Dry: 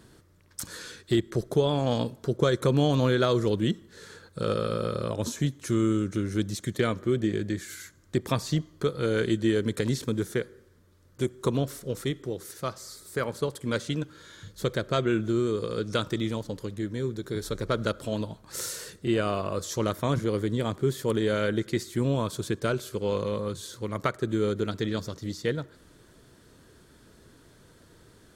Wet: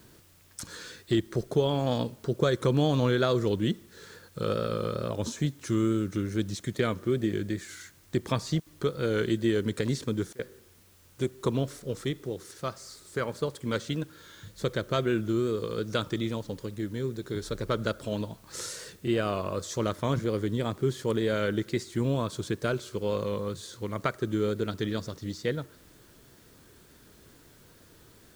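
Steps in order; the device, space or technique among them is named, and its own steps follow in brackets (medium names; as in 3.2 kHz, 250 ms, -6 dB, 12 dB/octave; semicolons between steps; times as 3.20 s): worn cassette (low-pass 8.6 kHz; wow and flutter; level dips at 8.60/10.33 s, 60 ms -24 dB; white noise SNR 31 dB); trim -1.5 dB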